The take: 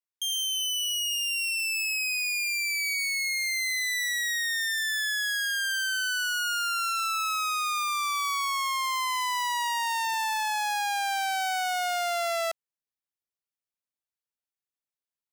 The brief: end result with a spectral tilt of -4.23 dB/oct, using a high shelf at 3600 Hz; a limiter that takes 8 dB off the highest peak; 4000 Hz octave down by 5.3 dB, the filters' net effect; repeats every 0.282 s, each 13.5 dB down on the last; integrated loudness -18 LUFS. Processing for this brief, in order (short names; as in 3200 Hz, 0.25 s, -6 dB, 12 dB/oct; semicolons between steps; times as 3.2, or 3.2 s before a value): high shelf 3600 Hz -4.5 dB; bell 4000 Hz -4.5 dB; limiter -32 dBFS; feedback echo 0.282 s, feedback 21%, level -13.5 dB; gain +18 dB